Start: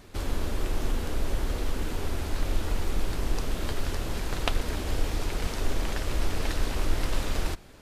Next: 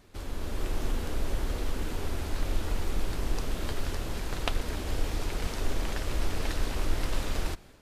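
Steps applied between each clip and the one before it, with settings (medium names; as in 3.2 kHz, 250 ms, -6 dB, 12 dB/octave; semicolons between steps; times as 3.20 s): level rider gain up to 5.5 dB; trim -7.5 dB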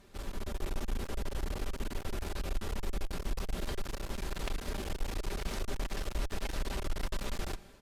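comb 5.1 ms, depth 38%; in parallel at 0 dB: peak limiter -23.5 dBFS, peak gain reduction 11 dB; on the sum: one-sided clip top -31 dBFS; trim -7.5 dB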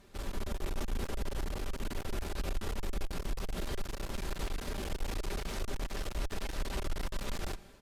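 peak limiter -31.5 dBFS, peak gain reduction 10 dB; upward expansion 1.5:1, over -47 dBFS; trim +6.5 dB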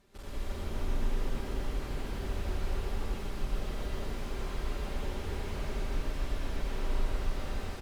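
loudspeakers at several distances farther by 29 m -4 dB, 84 m -1 dB; reverberation RT60 1.3 s, pre-delay 100 ms, DRR -3 dB; slew-rate limiter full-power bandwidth 34 Hz; trim -7 dB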